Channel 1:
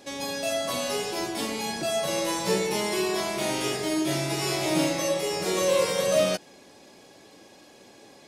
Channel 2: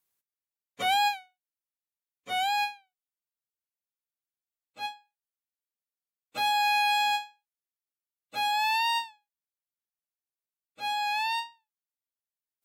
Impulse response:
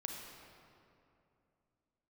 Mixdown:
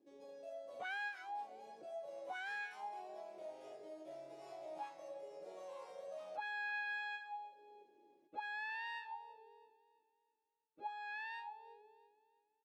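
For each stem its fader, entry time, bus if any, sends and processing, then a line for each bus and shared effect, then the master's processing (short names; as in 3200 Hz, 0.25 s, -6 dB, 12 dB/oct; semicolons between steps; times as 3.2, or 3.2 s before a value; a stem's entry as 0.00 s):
+1.5 dB, 0.00 s, no send, echo send -19.5 dB, pre-emphasis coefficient 0.8
+2.0 dB, 0.00 s, no send, echo send -12.5 dB, octaver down 1 oct, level +4 dB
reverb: off
echo: feedback echo 0.331 s, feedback 42%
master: high shelf 11000 Hz -6.5 dB; auto-wah 320–1600 Hz, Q 5.4, up, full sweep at -23.5 dBFS; compressor 1.5:1, threshold -53 dBFS, peak gain reduction 8 dB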